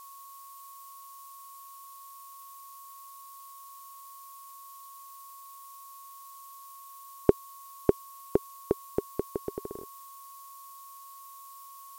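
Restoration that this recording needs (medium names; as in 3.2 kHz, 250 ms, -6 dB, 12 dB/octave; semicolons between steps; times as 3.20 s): band-stop 1.1 kHz, Q 30; noise reduction 30 dB, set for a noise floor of -48 dBFS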